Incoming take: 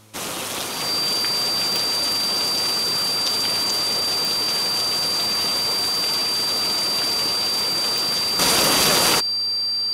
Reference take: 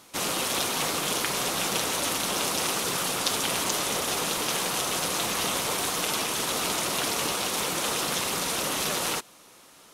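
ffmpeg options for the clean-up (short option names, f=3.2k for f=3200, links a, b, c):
-af "adeclick=t=4,bandreject=f=107.8:t=h:w=4,bandreject=f=215.6:t=h:w=4,bandreject=f=323.4:t=h:w=4,bandreject=f=431.2:t=h:w=4,bandreject=f=539:t=h:w=4,bandreject=f=4.7k:w=30,asetnsamples=n=441:p=0,asendcmd='8.39 volume volume -10dB',volume=0dB"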